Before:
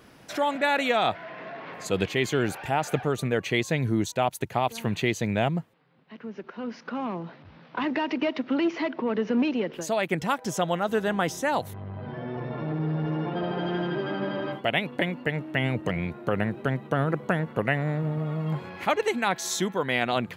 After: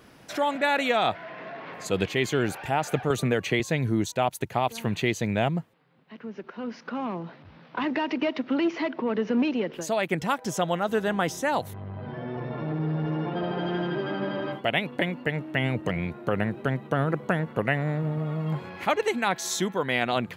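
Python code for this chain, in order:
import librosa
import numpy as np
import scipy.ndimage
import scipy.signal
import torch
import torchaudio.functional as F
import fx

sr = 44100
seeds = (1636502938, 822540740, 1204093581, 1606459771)

y = fx.band_squash(x, sr, depth_pct=100, at=(3.1, 3.6))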